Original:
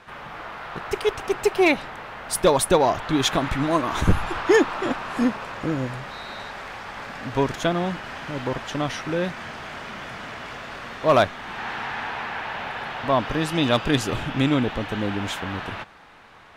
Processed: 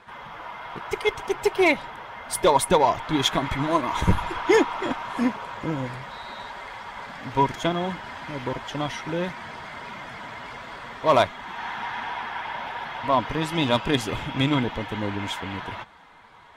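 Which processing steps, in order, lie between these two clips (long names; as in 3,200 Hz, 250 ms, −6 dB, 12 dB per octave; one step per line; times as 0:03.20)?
spectral magnitudes quantised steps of 15 dB
harmonic generator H 7 −32 dB, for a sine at −7 dBFS
hollow resonant body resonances 960/2,100/3,300 Hz, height 10 dB, ringing for 45 ms
level −1.5 dB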